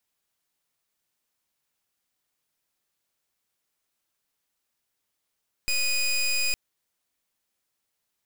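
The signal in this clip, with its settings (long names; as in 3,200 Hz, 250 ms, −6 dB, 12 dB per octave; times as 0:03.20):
pulse wave 2,480 Hz, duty 19% −24.5 dBFS 0.86 s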